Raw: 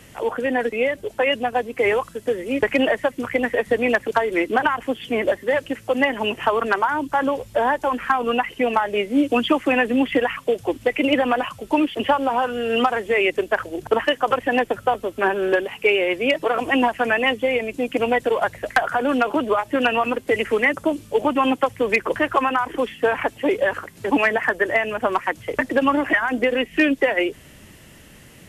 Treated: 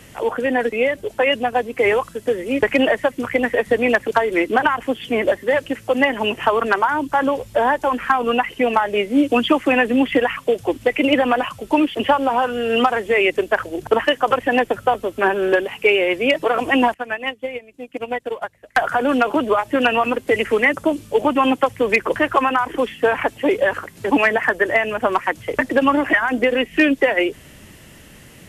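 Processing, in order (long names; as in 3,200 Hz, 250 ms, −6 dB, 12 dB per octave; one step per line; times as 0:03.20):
0:16.94–0:18.78: expander for the loud parts 2.5 to 1, over −27 dBFS
level +2.5 dB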